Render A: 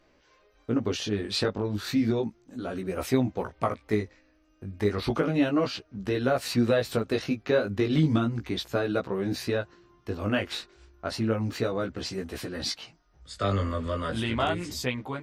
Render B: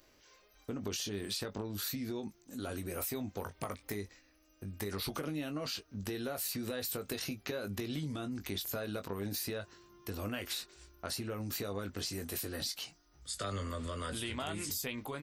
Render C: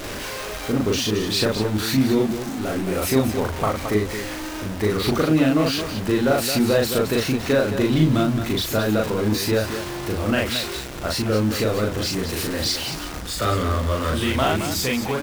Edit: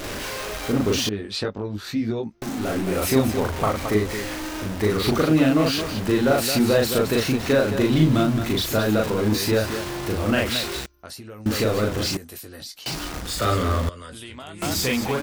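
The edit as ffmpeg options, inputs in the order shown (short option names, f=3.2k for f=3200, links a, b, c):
-filter_complex "[1:a]asplit=3[a][b][c];[2:a]asplit=5[d][e][f][g][h];[d]atrim=end=1.092[i];[0:a]atrim=start=1.088:end=2.422[j];[e]atrim=start=2.418:end=10.862[k];[a]atrim=start=10.858:end=11.462[l];[f]atrim=start=11.458:end=12.172[m];[b]atrim=start=12.168:end=12.862[n];[g]atrim=start=12.858:end=13.892[o];[c]atrim=start=13.888:end=14.622[p];[h]atrim=start=14.618[q];[i][j]acrossfade=d=0.004:c1=hsin:c2=hsin[r];[r][k]acrossfade=d=0.004:c1=hsin:c2=hsin[s];[s][l]acrossfade=d=0.004:c1=hsin:c2=hsin[t];[t][m]acrossfade=d=0.004:c1=hsin:c2=hsin[u];[u][n]acrossfade=d=0.004:c1=hsin:c2=hsin[v];[v][o]acrossfade=d=0.004:c1=hsin:c2=hsin[w];[w][p]acrossfade=d=0.004:c1=hsin:c2=hsin[x];[x][q]acrossfade=d=0.004:c1=hsin:c2=hsin"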